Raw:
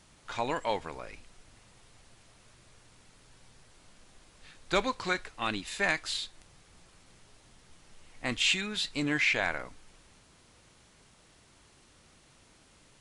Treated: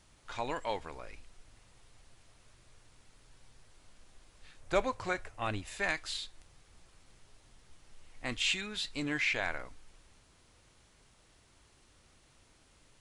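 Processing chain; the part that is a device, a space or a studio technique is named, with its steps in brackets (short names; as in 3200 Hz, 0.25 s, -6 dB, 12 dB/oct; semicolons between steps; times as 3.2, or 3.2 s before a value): 4.6–5.77 fifteen-band EQ 100 Hz +11 dB, 630 Hz +7 dB, 4000 Hz -7 dB; low shelf boost with a cut just above (low shelf 76 Hz +7 dB; bell 180 Hz -3.5 dB 0.85 oct); gain -4.5 dB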